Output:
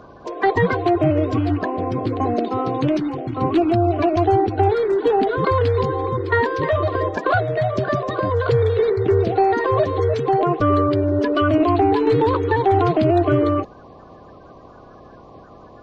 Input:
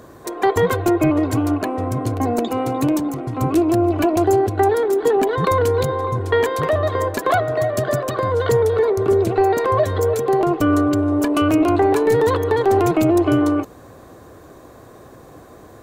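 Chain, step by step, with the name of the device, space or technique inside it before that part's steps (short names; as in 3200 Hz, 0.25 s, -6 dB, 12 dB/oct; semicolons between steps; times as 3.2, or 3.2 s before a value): clip after many re-uploads (LPF 4300 Hz 24 dB/oct; bin magnitudes rounded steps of 30 dB)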